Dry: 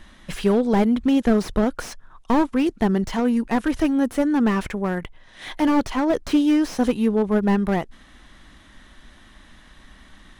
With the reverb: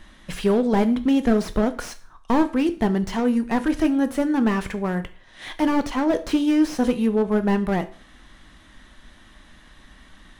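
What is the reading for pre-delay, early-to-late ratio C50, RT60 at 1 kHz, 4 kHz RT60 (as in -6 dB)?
6 ms, 16.0 dB, 0.45 s, 0.40 s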